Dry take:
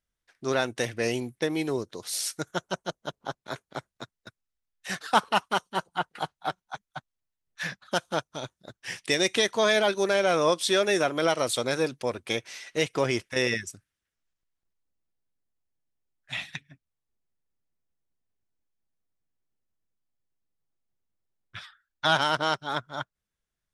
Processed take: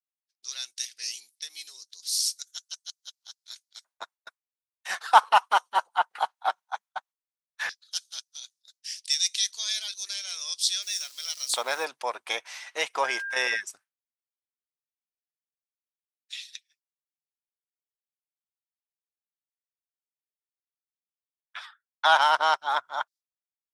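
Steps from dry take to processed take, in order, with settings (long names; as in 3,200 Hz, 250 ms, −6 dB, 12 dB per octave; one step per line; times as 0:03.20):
0:10.82–0:11.85: hold until the input has moved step −40.5 dBFS
downward expander −48 dBFS
auto-filter high-pass square 0.13 Hz 870–4,800 Hz
0:13.03–0:13.59: steady tone 1,600 Hz −31 dBFS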